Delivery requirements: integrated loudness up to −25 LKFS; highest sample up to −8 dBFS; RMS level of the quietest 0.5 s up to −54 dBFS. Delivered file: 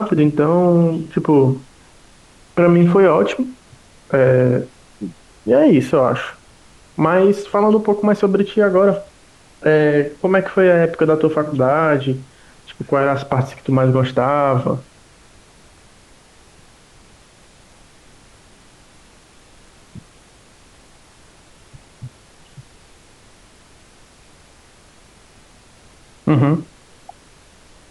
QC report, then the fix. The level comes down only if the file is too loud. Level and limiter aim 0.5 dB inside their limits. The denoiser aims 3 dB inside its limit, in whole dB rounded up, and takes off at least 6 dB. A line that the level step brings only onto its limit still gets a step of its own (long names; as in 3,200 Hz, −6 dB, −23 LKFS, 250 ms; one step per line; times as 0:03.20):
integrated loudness −16.0 LKFS: out of spec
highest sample −4.0 dBFS: out of spec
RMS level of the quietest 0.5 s −48 dBFS: out of spec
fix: level −9.5 dB